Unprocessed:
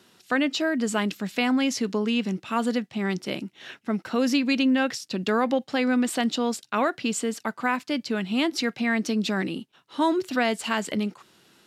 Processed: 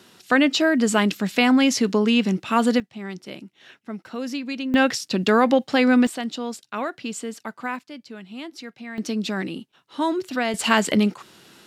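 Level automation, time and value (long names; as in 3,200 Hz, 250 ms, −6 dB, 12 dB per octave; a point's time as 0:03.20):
+6 dB
from 0:02.80 −6.5 dB
from 0:04.74 +6 dB
from 0:06.07 −4 dB
from 0:07.79 −11.5 dB
from 0:08.98 −0.5 dB
from 0:10.54 +8 dB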